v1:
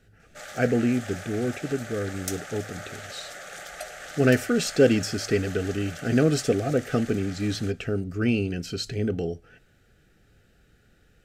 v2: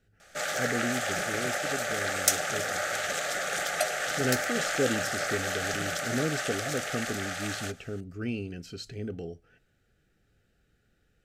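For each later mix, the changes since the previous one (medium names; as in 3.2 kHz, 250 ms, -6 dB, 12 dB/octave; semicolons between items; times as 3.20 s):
speech -9.5 dB; background +9.5 dB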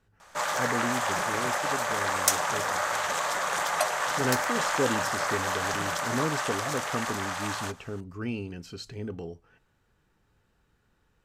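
master: remove Butterworth band-stop 1 kHz, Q 1.8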